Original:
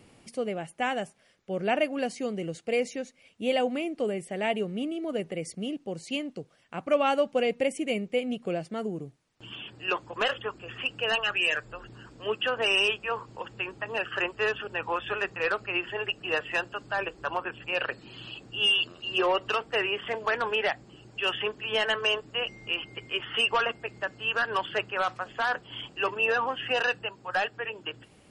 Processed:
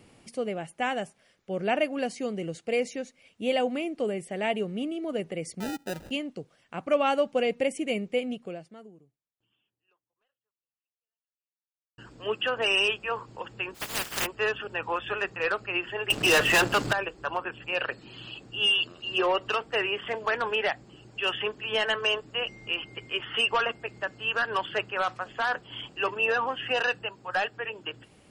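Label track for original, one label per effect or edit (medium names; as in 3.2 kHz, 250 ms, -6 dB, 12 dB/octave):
5.600000	6.110000	sample-rate reducer 1.1 kHz
8.240000	11.980000	fade out exponential
13.740000	14.250000	spectral contrast reduction exponent 0.16
16.100000	16.930000	waveshaping leveller passes 5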